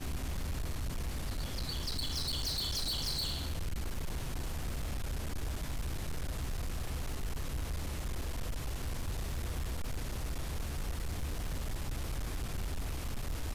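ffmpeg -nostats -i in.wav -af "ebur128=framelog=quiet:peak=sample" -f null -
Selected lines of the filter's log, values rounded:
Integrated loudness:
  I:         -38.5 LUFS
  Threshold: -48.5 LUFS
Loudness range:
  LRA:         4.5 LU
  Threshold: -58.4 LUFS
  LRA low:   -40.1 LUFS
  LRA high:  -35.6 LUFS
Sample peak:
  Peak:      -32.0 dBFS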